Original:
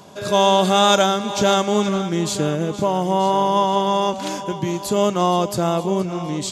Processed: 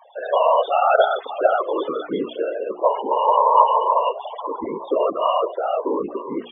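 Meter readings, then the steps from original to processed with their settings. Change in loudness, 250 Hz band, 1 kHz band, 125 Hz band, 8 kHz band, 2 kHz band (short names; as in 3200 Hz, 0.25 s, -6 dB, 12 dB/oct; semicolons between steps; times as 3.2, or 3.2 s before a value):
-1.0 dB, -10.0 dB, +1.0 dB, under -20 dB, under -40 dB, -2.5 dB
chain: sine-wave speech; whisperiser; loudest bins only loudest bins 32; notches 60/120/180/240/300/360/420 Hz; gain -1 dB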